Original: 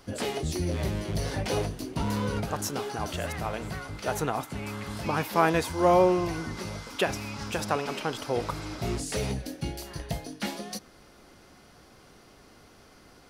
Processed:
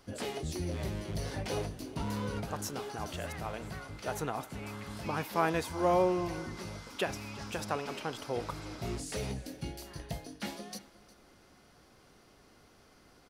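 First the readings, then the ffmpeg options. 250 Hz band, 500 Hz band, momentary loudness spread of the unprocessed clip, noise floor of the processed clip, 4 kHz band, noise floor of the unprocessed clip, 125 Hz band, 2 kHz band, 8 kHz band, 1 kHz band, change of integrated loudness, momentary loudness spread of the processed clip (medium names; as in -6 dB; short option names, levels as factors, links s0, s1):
-6.5 dB, -6.5 dB, 12 LU, -61 dBFS, -6.5 dB, -55 dBFS, -6.5 dB, -6.5 dB, -6.5 dB, -6.5 dB, -6.5 dB, 12 LU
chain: -af "aecho=1:1:357:0.106,volume=0.473"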